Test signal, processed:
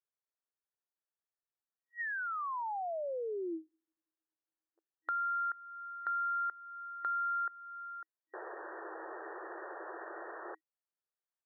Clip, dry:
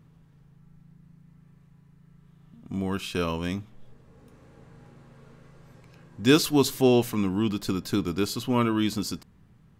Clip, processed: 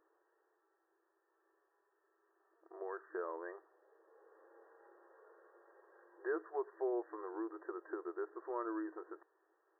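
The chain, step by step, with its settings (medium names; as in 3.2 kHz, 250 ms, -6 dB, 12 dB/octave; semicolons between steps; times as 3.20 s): FFT band-pass 320–1900 Hz; compression 2:1, threshold -37 dBFS; trim -5.5 dB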